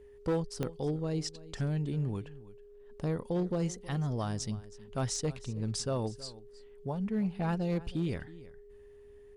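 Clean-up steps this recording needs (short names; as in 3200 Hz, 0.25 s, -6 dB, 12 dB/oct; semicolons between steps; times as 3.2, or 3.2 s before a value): clip repair -25 dBFS; de-click; notch 410 Hz, Q 30; inverse comb 0.32 s -18.5 dB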